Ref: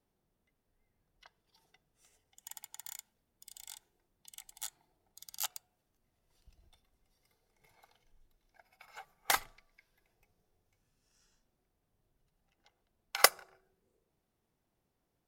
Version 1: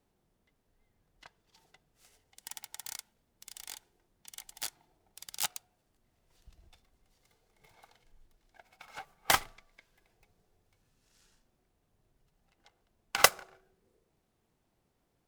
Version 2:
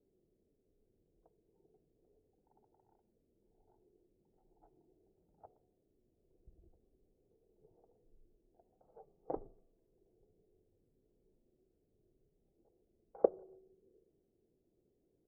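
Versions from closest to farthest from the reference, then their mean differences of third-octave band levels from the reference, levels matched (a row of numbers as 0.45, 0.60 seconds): 1, 2; 5.0, 18.5 decibels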